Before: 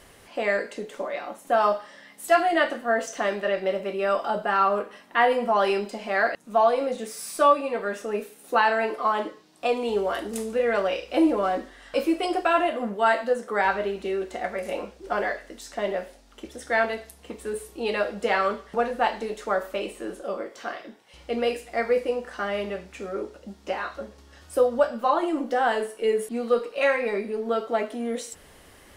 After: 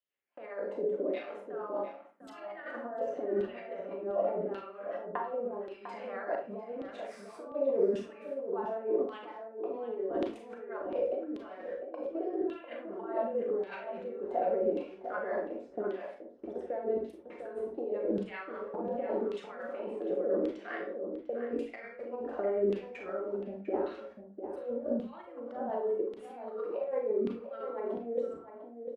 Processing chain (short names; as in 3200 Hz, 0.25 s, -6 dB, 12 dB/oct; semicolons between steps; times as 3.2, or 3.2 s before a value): gate -42 dBFS, range -34 dB; tilt shelf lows +9 dB, about 890 Hz; notches 50/100/150/200 Hz; negative-ratio compressor -29 dBFS, ratio -1; rotary speaker horn 5 Hz; LFO band-pass saw down 0.88 Hz 290–3400 Hz; outdoor echo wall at 120 m, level -8 dB; on a send at -2 dB: reverb RT60 0.35 s, pre-delay 27 ms